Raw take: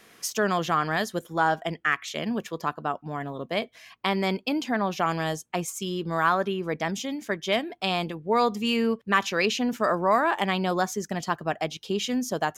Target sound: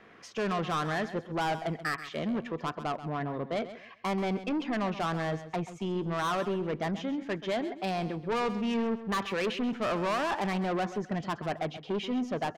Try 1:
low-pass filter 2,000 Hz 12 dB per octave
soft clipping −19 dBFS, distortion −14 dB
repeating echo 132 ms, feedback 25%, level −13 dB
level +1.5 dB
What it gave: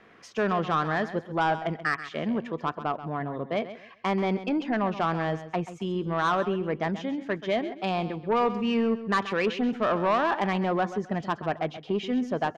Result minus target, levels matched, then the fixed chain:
soft clipping: distortion −8 dB
low-pass filter 2,000 Hz 12 dB per octave
soft clipping −28 dBFS, distortion −7 dB
repeating echo 132 ms, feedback 25%, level −13 dB
level +1.5 dB

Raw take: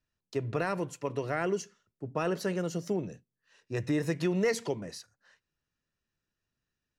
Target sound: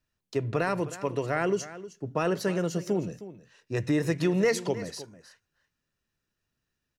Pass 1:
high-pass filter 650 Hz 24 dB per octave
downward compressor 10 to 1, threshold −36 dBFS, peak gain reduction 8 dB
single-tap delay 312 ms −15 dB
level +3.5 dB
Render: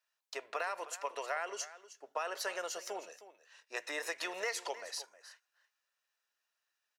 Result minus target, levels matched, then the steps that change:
downward compressor: peak gain reduction +8 dB; 500 Hz band −3.0 dB
remove: high-pass filter 650 Hz 24 dB per octave
remove: downward compressor 10 to 1, threshold −36 dBFS, peak gain reduction 8 dB

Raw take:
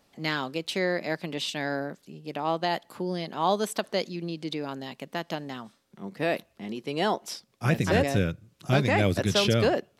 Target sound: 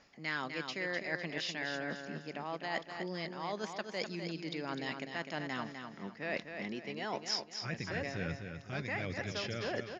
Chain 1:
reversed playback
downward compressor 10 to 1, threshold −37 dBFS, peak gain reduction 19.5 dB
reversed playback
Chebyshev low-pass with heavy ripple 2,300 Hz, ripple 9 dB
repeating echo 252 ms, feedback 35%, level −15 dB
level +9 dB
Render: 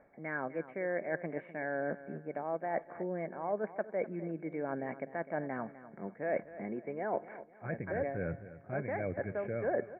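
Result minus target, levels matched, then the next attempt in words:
echo-to-direct −8 dB; 2,000 Hz band −4.5 dB
reversed playback
downward compressor 10 to 1, threshold −37 dBFS, peak gain reduction 19.5 dB
reversed playback
Chebyshev low-pass with heavy ripple 7,000 Hz, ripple 9 dB
repeating echo 252 ms, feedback 35%, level −7 dB
level +9 dB

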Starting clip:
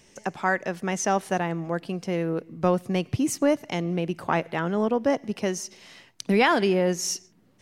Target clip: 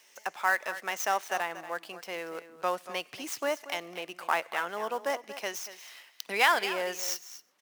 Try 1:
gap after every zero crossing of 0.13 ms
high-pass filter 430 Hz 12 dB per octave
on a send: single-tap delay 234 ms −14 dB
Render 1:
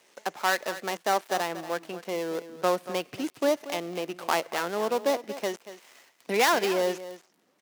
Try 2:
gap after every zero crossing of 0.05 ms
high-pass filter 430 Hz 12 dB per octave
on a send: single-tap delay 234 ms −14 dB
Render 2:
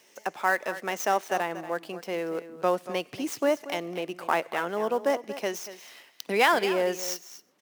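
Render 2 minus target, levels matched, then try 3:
500 Hz band +4.0 dB
gap after every zero crossing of 0.05 ms
high-pass filter 860 Hz 12 dB per octave
on a send: single-tap delay 234 ms −14 dB

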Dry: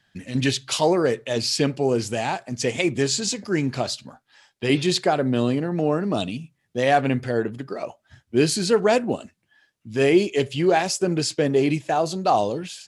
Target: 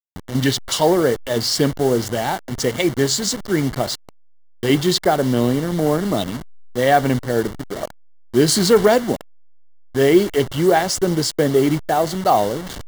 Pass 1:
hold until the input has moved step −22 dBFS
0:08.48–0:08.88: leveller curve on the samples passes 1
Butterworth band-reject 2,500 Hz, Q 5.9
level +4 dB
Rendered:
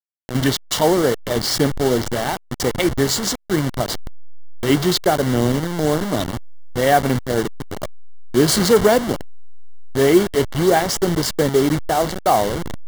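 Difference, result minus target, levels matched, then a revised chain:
hold until the input has moved: distortion +7 dB
hold until the input has moved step −28.5 dBFS
0:08.48–0:08.88: leveller curve on the samples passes 1
Butterworth band-reject 2,500 Hz, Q 5.9
level +4 dB

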